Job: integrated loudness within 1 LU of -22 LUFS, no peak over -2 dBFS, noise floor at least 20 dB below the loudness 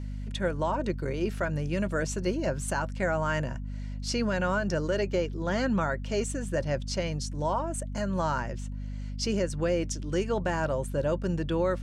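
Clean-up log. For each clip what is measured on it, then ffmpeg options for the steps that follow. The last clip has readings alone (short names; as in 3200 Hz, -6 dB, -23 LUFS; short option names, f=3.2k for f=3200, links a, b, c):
hum 50 Hz; harmonics up to 250 Hz; hum level -33 dBFS; loudness -30.0 LUFS; peak -15.0 dBFS; loudness target -22.0 LUFS
-> -af "bandreject=f=50:t=h:w=4,bandreject=f=100:t=h:w=4,bandreject=f=150:t=h:w=4,bandreject=f=200:t=h:w=4,bandreject=f=250:t=h:w=4"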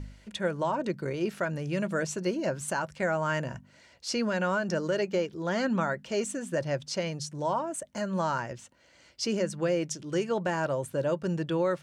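hum none; loudness -30.5 LUFS; peak -16.0 dBFS; loudness target -22.0 LUFS
-> -af "volume=8.5dB"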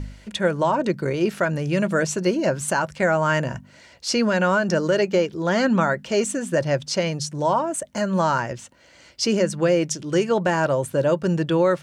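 loudness -22.0 LUFS; peak -7.5 dBFS; noise floor -51 dBFS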